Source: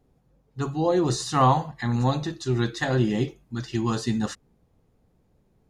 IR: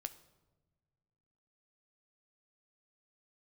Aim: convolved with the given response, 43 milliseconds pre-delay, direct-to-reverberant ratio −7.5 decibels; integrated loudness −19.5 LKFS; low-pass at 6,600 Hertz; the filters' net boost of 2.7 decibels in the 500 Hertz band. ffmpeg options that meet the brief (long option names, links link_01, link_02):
-filter_complex "[0:a]lowpass=6600,equalizer=frequency=500:width_type=o:gain=3.5,asplit=2[link_01][link_02];[1:a]atrim=start_sample=2205,adelay=43[link_03];[link_02][link_03]afir=irnorm=-1:irlink=0,volume=10.5dB[link_04];[link_01][link_04]amix=inputs=2:normalize=0,volume=-3.5dB"